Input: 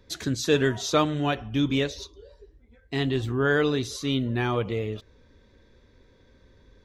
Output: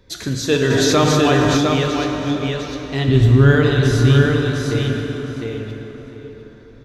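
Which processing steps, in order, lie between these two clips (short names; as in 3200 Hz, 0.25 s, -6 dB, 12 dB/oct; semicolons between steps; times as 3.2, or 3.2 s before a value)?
3.08–3.55 tone controls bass +13 dB, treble +3 dB; 4.27–4.71 level quantiser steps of 23 dB; feedback echo 0.705 s, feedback 17%, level -3.5 dB; plate-style reverb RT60 4.5 s, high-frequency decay 0.55×, DRR 1.5 dB; 0.7–1.57 fast leveller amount 70%; gain +4 dB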